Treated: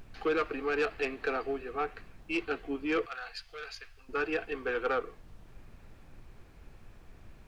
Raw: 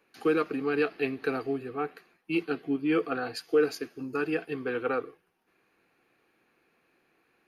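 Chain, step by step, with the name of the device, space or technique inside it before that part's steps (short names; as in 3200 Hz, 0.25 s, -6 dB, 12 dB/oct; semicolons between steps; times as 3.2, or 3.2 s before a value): aircraft cabin announcement (BPF 480–3700 Hz; soft clip -25.5 dBFS, distortion -14 dB; brown noise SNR 15 dB); 3.06–4.09 passive tone stack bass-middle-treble 10-0-10; gain +3 dB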